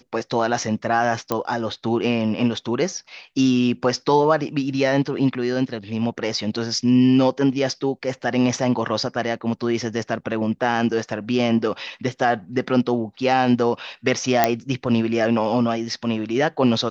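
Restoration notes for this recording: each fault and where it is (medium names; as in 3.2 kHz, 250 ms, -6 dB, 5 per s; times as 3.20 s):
1.32 s: pop -8 dBFS
14.44 s: pop -1 dBFS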